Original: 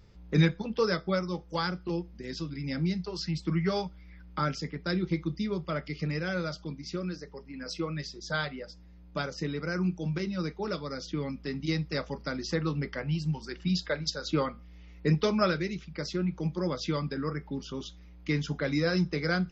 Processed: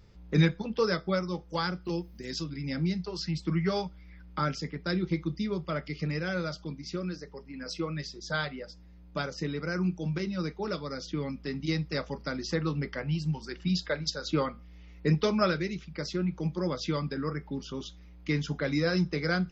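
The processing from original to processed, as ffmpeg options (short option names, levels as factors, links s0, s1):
-filter_complex "[0:a]asettb=1/sr,asplit=3[s0][s1][s2];[s0]atrim=end=1.854[s3];[s1]atrim=start=1.85:end=2.44,asetpts=PTS-STARTPTS,afade=t=in:d=0.004:c=qsin,afade=t=out:st=0.586:d=0.004:c=qsin,aemphasis=mode=production:type=50fm[s4];[s2]atrim=start=2.436[s5];[s3][s4]acrossfade=d=0.004:c1=hsin:c2=qsin[s6];[s6][s5]acrossfade=d=0.004:c1=qsin:c2=hsin"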